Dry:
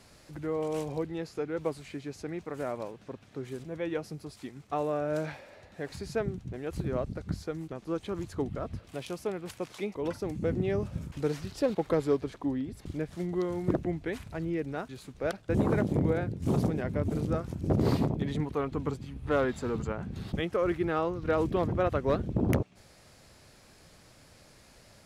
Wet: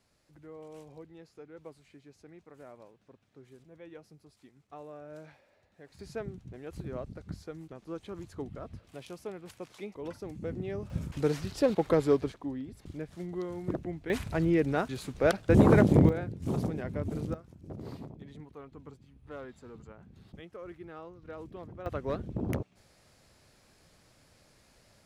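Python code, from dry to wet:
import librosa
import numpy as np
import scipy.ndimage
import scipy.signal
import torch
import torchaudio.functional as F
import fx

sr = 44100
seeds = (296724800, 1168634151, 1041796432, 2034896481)

y = fx.gain(x, sr, db=fx.steps((0.0, -15.5), (5.99, -7.0), (10.9, 2.0), (12.32, -5.5), (14.1, 6.5), (16.09, -4.0), (17.34, -16.5), (21.86, -6.0)))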